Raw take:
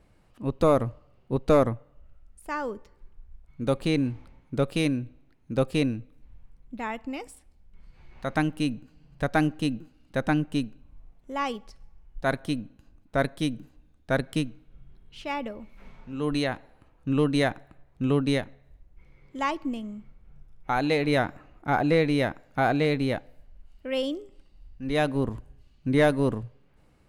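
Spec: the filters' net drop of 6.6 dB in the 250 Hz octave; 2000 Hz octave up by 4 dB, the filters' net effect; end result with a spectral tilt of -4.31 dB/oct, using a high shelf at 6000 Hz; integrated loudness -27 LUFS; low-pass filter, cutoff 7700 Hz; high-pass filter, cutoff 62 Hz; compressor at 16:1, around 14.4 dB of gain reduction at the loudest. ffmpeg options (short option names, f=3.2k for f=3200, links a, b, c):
-af "highpass=62,lowpass=7.7k,equalizer=f=250:t=o:g=-8.5,equalizer=f=2k:t=o:g=6,highshelf=f=6k:g=-7,acompressor=threshold=-31dB:ratio=16,volume=11.5dB"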